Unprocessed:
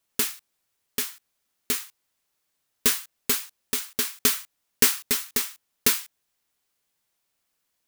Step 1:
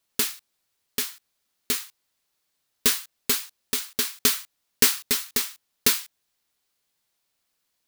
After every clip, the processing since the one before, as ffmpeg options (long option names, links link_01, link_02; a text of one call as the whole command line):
ffmpeg -i in.wav -af "equalizer=frequency=4200:width=1.9:gain=3.5" out.wav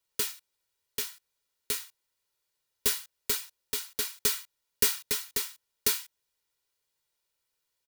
ffmpeg -i in.wav -filter_complex "[0:a]aecho=1:1:2.1:0.52,acrossover=split=260|470|6000[link_01][link_02][link_03][link_04];[link_03]asoftclip=type=tanh:threshold=-19dB[link_05];[link_01][link_02][link_05][link_04]amix=inputs=4:normalize=0,volume=-6.5dB" out.wav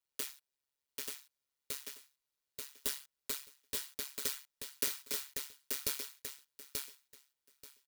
ffmpeg -i in.wav -filter_complex "[0:a]tremolo=f=140:d=0.919,asplit=2[link_01][link_02];[link_02]aecho=0:1:884|1768|2652:0.631|0.107|0.0182[link_03];[link_01][link_03]amix=inputs=2:normalize=0,volume=-6dB" out.wav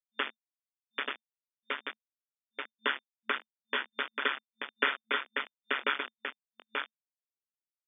ffmpeg -i in.wav -af "equalizer=frequency=1400:width=0.86:gain=15,acrusher=bits=5:mix=0:aa=0.000001,afftfilt=real='re*between(b*sr/4096,220,3600)':imag='im*between(b*sr/4096,220,3600)':win_size=4096:overlap=0.75,volume=7dB" out.wav